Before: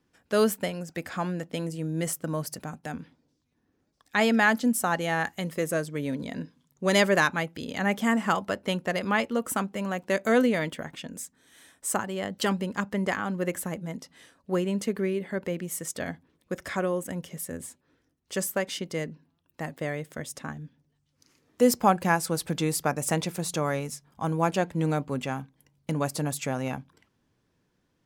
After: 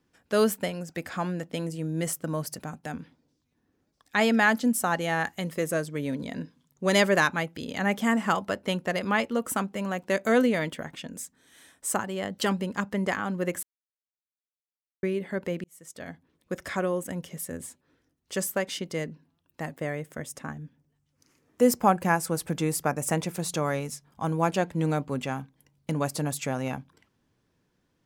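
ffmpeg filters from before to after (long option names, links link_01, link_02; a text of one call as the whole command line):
ffmpeg -i in.wav -filter_complex "[0:a]asettb=1/sr,asplit=3[link_01][link_02][link_03];[link_01]atrim=end=19.724[link_04];[link_02]atrim=start=19.72:end=23.34,asetpts=PTS-STARTPTS,afade=type=in:duration=0.004:curve=qsin,afade=type=out:start_time=3.616:duration=0.004:curve=qsin,equalizer=frequency=4000:width=1.5:gain=-6[link_05];[link_03]atrim=start=23.336[link_06];[link_04][link_05]acrossfade=duration=0.004:curve1=hsin:curve2=qsin[link_07];[link_07][link_06]acrossfade=duration=0.004:curve1=qsin:curve2=hsin,asplit=4[link_08][link_09][link_10][link_11];[link_08]atrim=end=13.63,asetpts=PTS-STARTPTS,afade=type=out:start_time=13.626:duration=0.004:curve=hsin[link_12];[link_09]atrim=start=13.63:end=15.03,asetpts=PTS-STARTPTS,volume=0[link_13];[link_10]atrim=start=15.03:end=15.64,asetpts=PTS-STARTPTS,afade=type=in:duration=0.004:curve=hsin,afade=type=out:start_time=0.606:duration=0.004:curve=hsin[link_14];[link_11]atrim=start=15.64,asetpts=PTS-STARTPTS,afade=type=in:duration=0.9[link_15];[link_12][link_13][link_14][link_15]concat=n=4:v=0:a=1" out.wav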